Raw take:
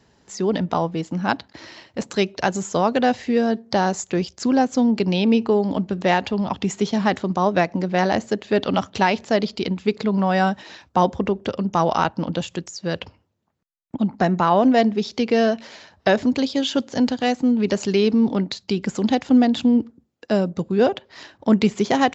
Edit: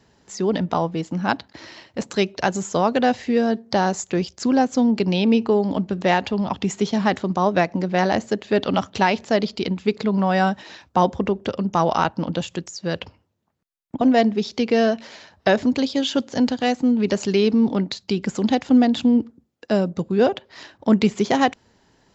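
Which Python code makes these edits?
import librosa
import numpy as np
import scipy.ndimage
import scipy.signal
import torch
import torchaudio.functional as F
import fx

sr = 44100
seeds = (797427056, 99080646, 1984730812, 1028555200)

y = fx.edit(x, sr, fx.cut(start_s=14.01, length_s=0.6), tone=tone)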